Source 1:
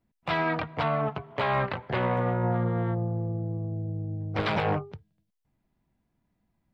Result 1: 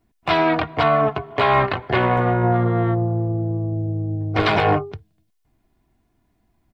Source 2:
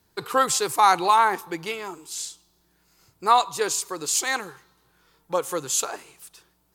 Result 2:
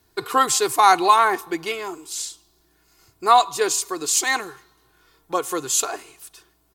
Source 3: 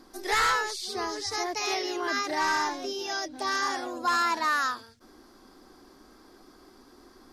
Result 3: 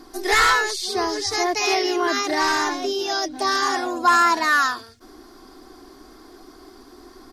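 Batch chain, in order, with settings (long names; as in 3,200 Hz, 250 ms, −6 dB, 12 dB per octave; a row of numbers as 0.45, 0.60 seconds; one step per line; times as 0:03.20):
comb filter 2.8 ms, depth 49%
loudness normalisation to −20 LKFS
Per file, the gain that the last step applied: +9.0, +2.5, +7.0 decibels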